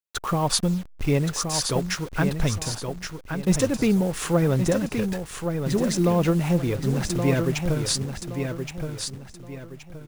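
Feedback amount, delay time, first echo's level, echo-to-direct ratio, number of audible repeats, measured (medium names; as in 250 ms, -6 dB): 33%, 1122 ms, -6.5 dB, -6.0 dB, 3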